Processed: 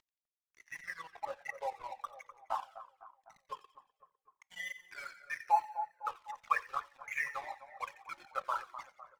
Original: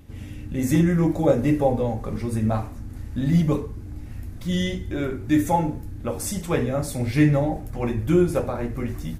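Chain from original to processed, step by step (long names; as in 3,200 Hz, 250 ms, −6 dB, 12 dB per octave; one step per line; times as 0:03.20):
spectral envelope exaggerated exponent 2
elliptic band-pass filter 1,000–2,500 Hz, stop band 60 dB
in parallel at 0 dB: downward compressor, threshold −55 dBFS, peak gain reduction 23.5 dB
on the sum: dead-zone distortion −57 dBFS
echo with a time of its own for lows and highs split 1,700 Hz, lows 252 ms, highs 88 ms, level −13.5 dB
on a send at −21.5 dB: convolution reverb RT60 0.70 s, pre-delay 3 ms
on the sum: flanger whose copies keep moving one way falling 1.6 Hz
level +14 dB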